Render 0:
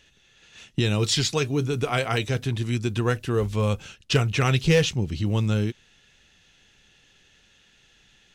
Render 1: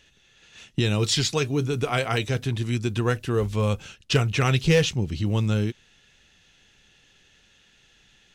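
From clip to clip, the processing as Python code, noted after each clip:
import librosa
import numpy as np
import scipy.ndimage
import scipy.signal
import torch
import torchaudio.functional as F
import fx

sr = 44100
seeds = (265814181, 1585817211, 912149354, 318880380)

y = x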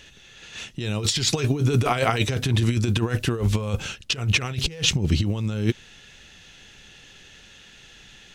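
y = fx.over_compress(x, sr, threshold_db=-27.0, ratio=-0.5)
y = y * 10.0 ** (5.5 / 20.0)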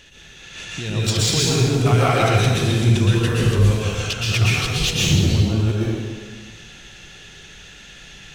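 y = 10.0 ** (-16.0 / 20.0) * np.tanh(x / 10.0 ** (-16.0 / 20.0))
y = fx.rev_plate(y, sr, seeds[0], rt60_s=1.6, hf_ratio=0.8, predelay_ms=105, drr_db=-6.0)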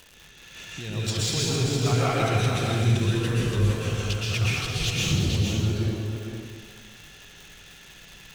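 y = fx.dmg_crackle(x, sr, seeds[1], per_s=230.0, level_db=-29.0)
y = y + 10.0 ** (-6.0 / 20.0) * np.pad(y, (int(459 * sr / 1000.0), 0))[:len(y)]
y = y * 10.0 ** (-7.5 / 20.0)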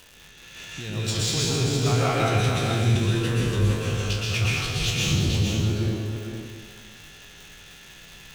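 y = fx.spec_trails(x, sr, decay_s=0.37)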